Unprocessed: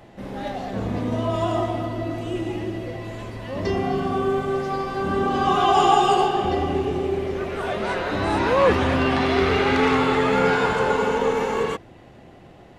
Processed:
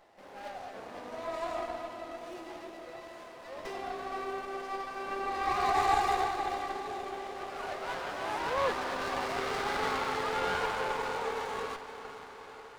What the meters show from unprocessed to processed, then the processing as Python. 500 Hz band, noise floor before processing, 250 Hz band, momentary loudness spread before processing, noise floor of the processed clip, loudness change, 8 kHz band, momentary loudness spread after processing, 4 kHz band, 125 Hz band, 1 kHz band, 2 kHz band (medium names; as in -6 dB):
-14.5 dB, -47 dBFS, -20.0 dB, 12 LU, -49 dBFS, -12.0 dB, -7.0 dB, 15 LU, -10.5 dB, -23.0 dB, -9.5 dB, -9.5 dB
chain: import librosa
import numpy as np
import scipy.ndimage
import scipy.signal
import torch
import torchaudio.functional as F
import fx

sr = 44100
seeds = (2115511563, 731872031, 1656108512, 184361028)

y = scipy.signal.sosfilt(scipy.signal.butter(2, 660.0, 'highpass', fs=sr, output='sos'), x)
y = fx.echo_diffused(y, sr, ms=465, feedback_pct=68, wet_db=-12)
y = fx.running_max(y, sr, window=9)
y = F.gain(torch.from_numpy(y), -8.0).numpy()